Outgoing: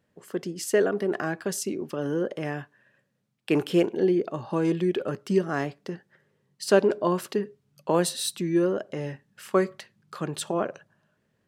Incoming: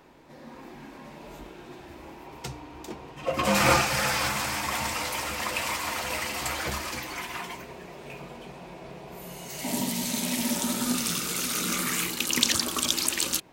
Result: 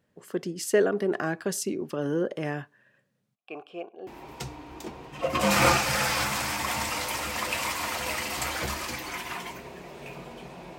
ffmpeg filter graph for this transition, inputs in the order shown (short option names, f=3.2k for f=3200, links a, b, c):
-filter_complex "[0:a]asplit=3[a][b][c];[a]afade=t=out:st=3.34:d=0.02[d];[b]asplit=3[e][f][g];[e]bandpass=f=730:t=q:w=8,volume=0dB[h];[f]bandpass=f=1.09k:t=q:w=8,volume=-6dB[i];[g]bandpass=f=2.44k:t=q:w=8,volume=-9dB[j];[h][i][j]amix=inputs=3:normalize=0,afade=t=in:st=3.34:d=0.02,afade=t=out:st=4.07:d=0.02[k];[c]afade=t=in:st=4.07:d=0.02[l];[d][k][l]amix=inputs=3:normalize=0,apad=whole_dur=10.78,atrim=end=10.78,atrim=end=4.072[m];[1:a]atrim=start=2.108:end=8.82[n];[m][n]acrossfade=d=0.004:c1=hsin:c2=hsin"